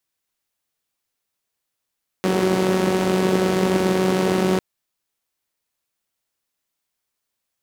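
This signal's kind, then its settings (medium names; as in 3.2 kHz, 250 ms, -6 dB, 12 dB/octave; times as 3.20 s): four-cylinder engine model, steady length 2.35 s, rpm 5600, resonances 210/350 Hz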